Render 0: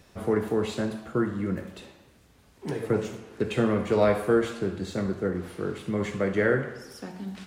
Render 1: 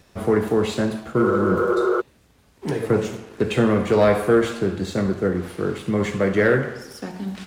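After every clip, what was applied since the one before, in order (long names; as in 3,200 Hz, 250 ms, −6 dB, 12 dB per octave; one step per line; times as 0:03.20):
healed spectral selection 0:01.22–0:01.98, 350–3,500 Hz before
leveller curve on the samples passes 1
level +3 dB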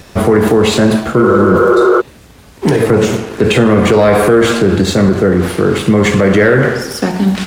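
boost into a limiter +18.5 dB
level −1 dB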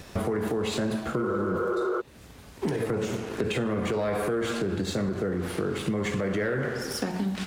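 downward compressor 4 to 1, threshold −19 dBFS, peak gain reduction 11.5 dB
level −8 dB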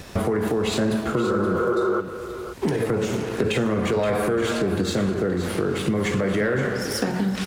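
single-tap delay 524 ms −11 dB
level +5 dB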